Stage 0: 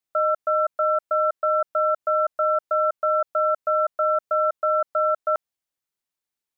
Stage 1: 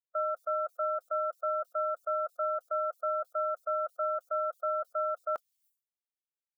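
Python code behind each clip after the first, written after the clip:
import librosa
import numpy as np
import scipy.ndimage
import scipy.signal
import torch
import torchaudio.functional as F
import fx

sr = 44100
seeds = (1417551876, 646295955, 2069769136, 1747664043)

y = fx.bin_expand(x, sr, power=1.5)
y = fx.dereverb_blind(y, sr, rt60_s=0.58)
y = fx.sustainer(y, sr, db_per_s=130.0)
y = y * 10.0 ** (-9.0 / 20.0)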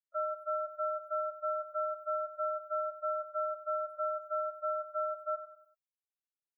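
y = fx.spec_topn(x, sr, count=4)
y = fx.echo_feedback(y, sr, ms=96, feedback_pct=41, wet_db=-12)
y = y * 10.0 ** (-2.0 / 20.0)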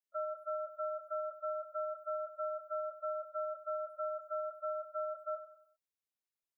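y = fx.doubler(x, sr, ms=19.0, db=-7.5)
y = y * 10.0 ** (-2.5 / 20.0)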